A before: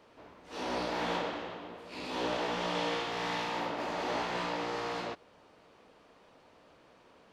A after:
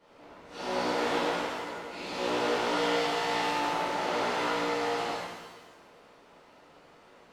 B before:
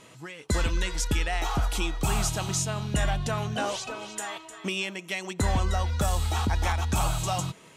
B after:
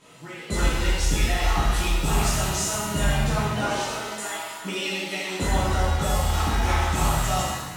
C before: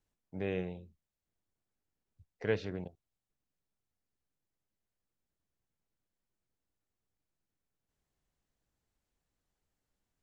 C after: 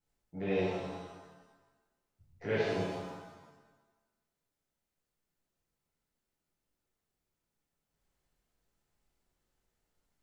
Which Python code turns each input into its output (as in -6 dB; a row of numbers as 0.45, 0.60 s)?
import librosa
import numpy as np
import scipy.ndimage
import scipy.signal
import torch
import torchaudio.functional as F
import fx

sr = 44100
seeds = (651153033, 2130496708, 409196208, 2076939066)

y = fx.rev_shimmer(x, sr, seeds[0], rt60_s=1.2, semitones=7, shimmer_db=-8, drr_db=-11.0)
y = y * librosa.db_to_amplitude(-7.5)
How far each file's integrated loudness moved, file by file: +5.0, +4.0, +2.0 LU